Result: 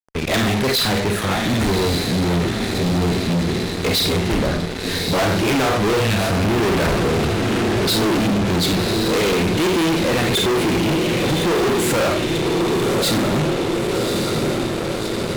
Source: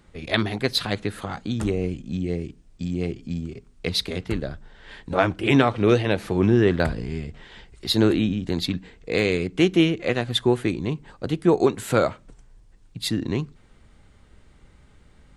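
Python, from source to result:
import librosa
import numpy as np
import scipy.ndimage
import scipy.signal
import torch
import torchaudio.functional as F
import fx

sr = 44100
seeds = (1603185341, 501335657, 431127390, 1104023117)

y = fx.cheby1_bandstop(x, sr, low_hz=250.0, high_hz=1700.0, order=4, at=(6.0, 6.45))
y = fx.echo_diffused(y, sr, ms=1150, feedback_pct=62, wet_db=-10)
y = fx.rev_schroeder(y, sr, rt60_s=0.36, comb_ms=31, drr_db=6.0)
y = fx.fuzz(y, sr, gain_db=34.0, gate_db=-41.0)
y = y * librosa.db_to_amplitude(-3.0)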